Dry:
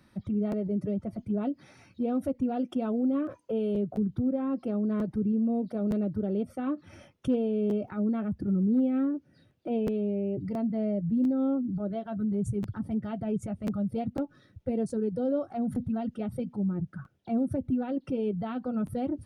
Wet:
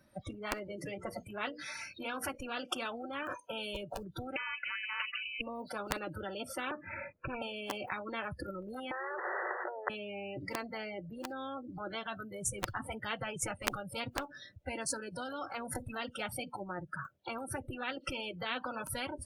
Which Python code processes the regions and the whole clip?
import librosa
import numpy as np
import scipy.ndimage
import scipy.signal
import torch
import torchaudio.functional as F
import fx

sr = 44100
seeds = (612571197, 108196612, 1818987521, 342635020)

y = fx.chain(x, sr, fx.hum_notches(base_hz=60, count=8),
    fx.dynamic_eq(hz=1600.0, q=1.3, threshold_db=-50.0, ratio=4.0, max_db=4), at=(0.63, 2.35))
y = fx.chain(y, sr, fx.highpass(hz=47.0, slope=12),
    fx.freq_invert(carrier_hz=2800),
    fx.comb(ms=3.5, depth=0.53), at=(4.36, 5.41))
y = fx.chain(y, sr, fx.steep_lowpass(hz=2500.0, slope=96),
    fx.low_shelf(hz=420.0, db=5.5), at=(6.71, 7.42))
y = fx.chain(y, sr, fx.brickwall_bandpass(low_hz=370.0, high_hz=2000.0),
    fx.env_flatten(amount_pct=100), at=(8.91, 9.9))
y = fx.noise_reduce_blind(y, sr, reduce_db=23)
y = fx.peak_eq(y, sr, hz=600.0, db=13.0, octaves=0.27)
y = fx.spectral_comp(y, sr, ratio=10.0)
y = y * librosa.db_to_amplitude(3.5)